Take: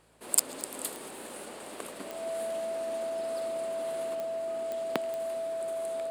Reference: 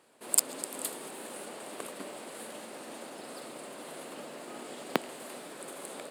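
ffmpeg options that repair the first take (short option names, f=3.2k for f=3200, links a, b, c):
-af "adeclick=t=4,bandreject=f=55.3:t=h:w=4,bandreject=f=110.6:t=h:w=4,bandreject=f=165.9:t=h:w=4,bandreject=f=660:w=30,asetnsamples=n=441:p=0,asendcmd='4.15 volume volume 3.5dB',volume=0dB"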